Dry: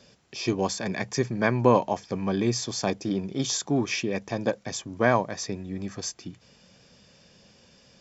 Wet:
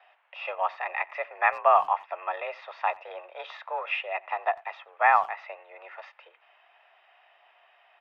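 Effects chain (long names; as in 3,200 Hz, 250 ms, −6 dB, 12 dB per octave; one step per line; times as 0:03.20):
single-sideband voice off tune +170 Hz 540–2,600 Hz
far-end echo of a speakerphone 90 ms, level −23 dB
level +3.5 dB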